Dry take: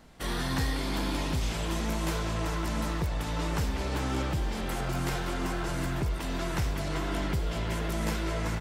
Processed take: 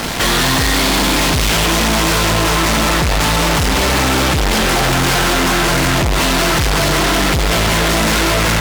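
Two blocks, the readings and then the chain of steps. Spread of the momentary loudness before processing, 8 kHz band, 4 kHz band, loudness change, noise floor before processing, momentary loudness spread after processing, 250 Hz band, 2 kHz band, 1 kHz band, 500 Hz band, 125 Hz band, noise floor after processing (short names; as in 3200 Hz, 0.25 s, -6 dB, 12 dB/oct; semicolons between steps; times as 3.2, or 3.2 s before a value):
2 LU, +23.5 dB, +23.0 dB, +18.0 dB, -33 dBFS, 1 LU, +15.5 dB, +21.5 dB, +19.5 dB, +17.5 dB, +13.5 dB, -14 dBFS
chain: LPF 5300 Hz; tilt +1.5 dB/oct; in parallel at -9.5 dB: companded quantiser 4-bit; on the sum: fuzz box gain 53 dB, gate -56 dBFS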